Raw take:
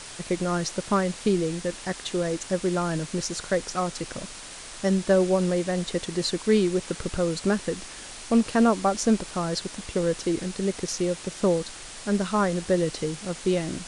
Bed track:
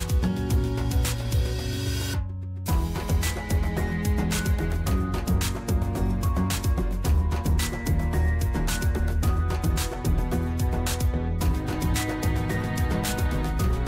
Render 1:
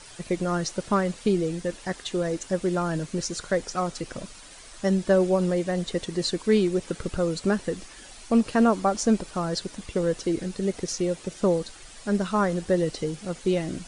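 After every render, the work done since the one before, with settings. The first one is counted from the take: denoiser 9 dB, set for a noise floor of -41 dBFS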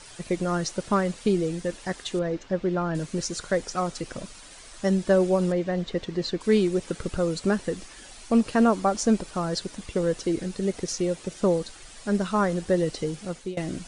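2.19–2.95 air absorption 190 m; 5.52–6.41 air absorption 130 m; 13.16–13.57 fade out equal-power, to -21.5 dB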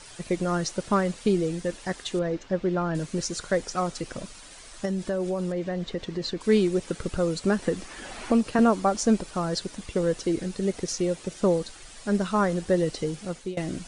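4.85–6.37 compressor 4:1, threshold -25 dBFS; 7.62–8.59 three-band squash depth 70%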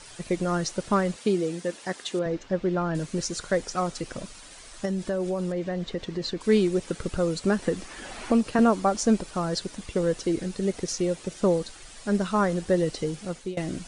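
1.16–2.26 HPF 190 Hz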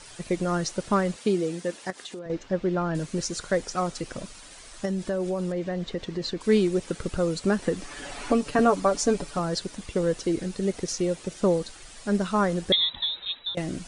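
1.9–2.3 compressor, threshold -35 dBFS; 7.82–9.39 comb 7 ms; 12.72–13.55 inverted band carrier 3900 Hz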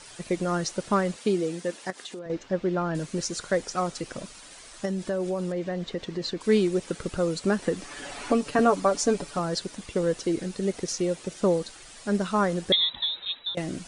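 low shelf 86 Hz -8 dB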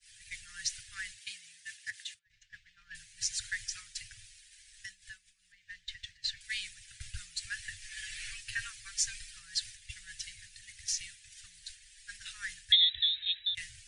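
Chebyshev band-stop 110–1700 Hz, order 5; expander -40 dBFS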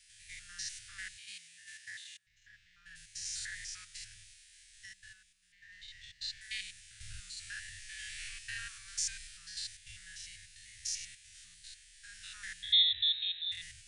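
stepped spectrum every 0.1 s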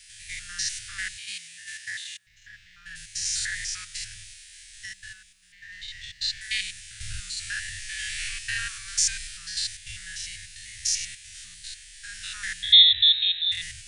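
gain +12 dB

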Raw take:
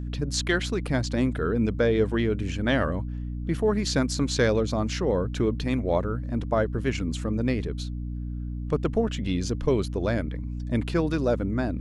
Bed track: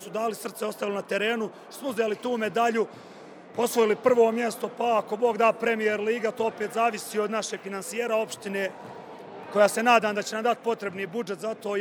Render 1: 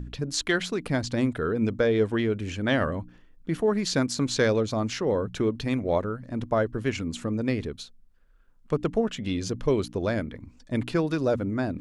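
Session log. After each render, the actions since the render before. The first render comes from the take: de-hum 60 Hz, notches 5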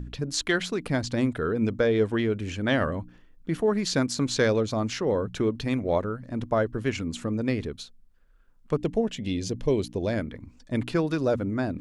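8.77–10.13 bell 1300 Hz -12.5 dB 0.59 oct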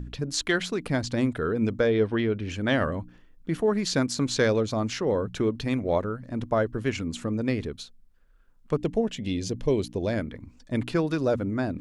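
1.9–2.5 polynomial smoothing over 15 samples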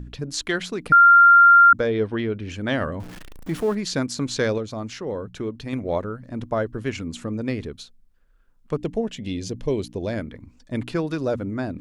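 0.92–1.73 bleep 1390 Hz -8 dBFS; 3–3.75 zero-crossing step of -34.5 dBFS; 4.58–5.73 gain -4 dB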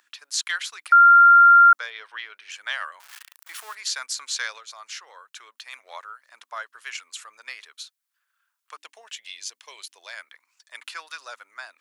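HPF 1100 Hz 24 dB/oct; high shelf 6100 Hz +7 dB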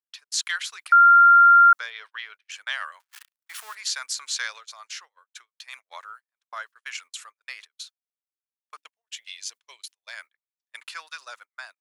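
gate -43 dBFS, range -40 dB; low shelf 450 Hz -11 dB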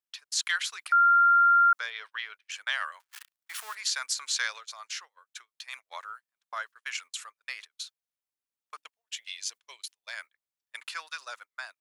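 compressor 2:1, threshold -18 dBFS, peak gain reduction 4 dB; limiter -16.5 dBFS, peak gain reduction 6 dB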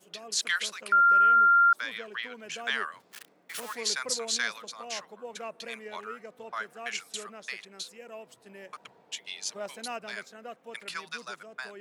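add bed track -18.5 dB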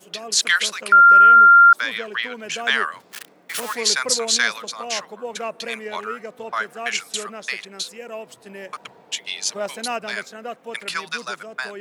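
gain +10.5 dB

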